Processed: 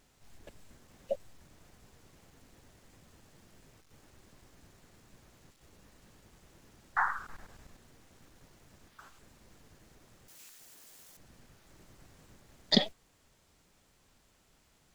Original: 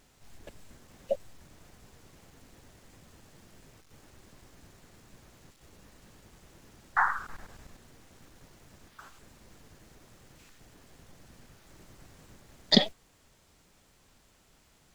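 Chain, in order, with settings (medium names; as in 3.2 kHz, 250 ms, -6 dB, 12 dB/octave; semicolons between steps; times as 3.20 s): 10.28–11.17 s: RIAA curve recording; trim -4 dB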